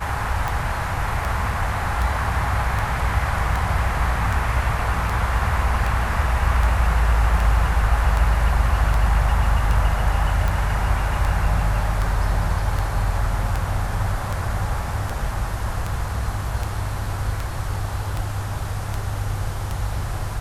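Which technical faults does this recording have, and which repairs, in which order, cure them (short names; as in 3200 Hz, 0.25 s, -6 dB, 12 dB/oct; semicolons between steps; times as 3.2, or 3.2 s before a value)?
tick 78 rpm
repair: de-click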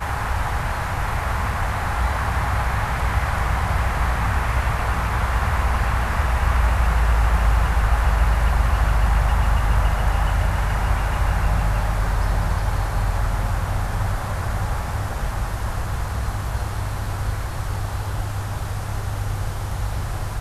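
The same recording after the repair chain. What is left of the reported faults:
none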